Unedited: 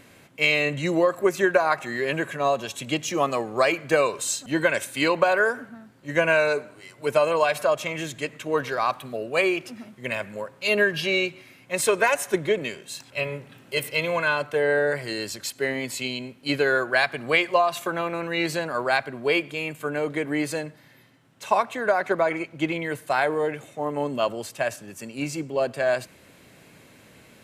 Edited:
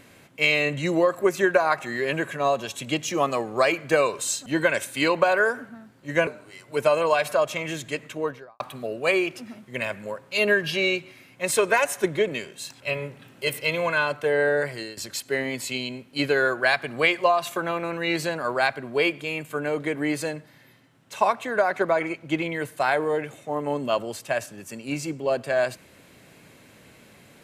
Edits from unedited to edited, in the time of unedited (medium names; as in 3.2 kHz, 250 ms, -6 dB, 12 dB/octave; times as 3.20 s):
6.27–6.57 s: delete
8.34–8.90 s: studio fade out
14.88–15.27 s: fade out equal-power, to -16 dB